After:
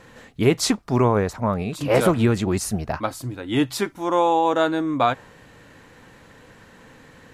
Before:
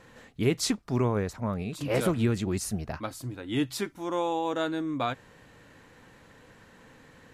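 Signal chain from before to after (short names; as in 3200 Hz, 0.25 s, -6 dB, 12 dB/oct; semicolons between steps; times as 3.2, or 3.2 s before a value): dynamic EQ 850 Hz, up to +6 dB, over -43 dBFS, Q 0.81; gain +6 dB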